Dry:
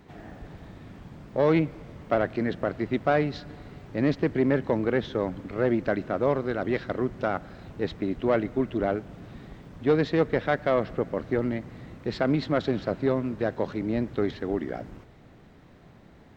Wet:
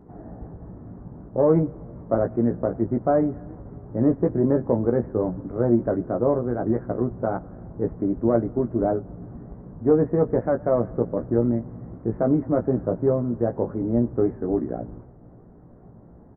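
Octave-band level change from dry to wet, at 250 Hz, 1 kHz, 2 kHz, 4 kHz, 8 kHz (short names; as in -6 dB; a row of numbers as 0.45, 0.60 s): +4.5 dB, 0.0 dB, -11.0 dB, under -40 dB, n/a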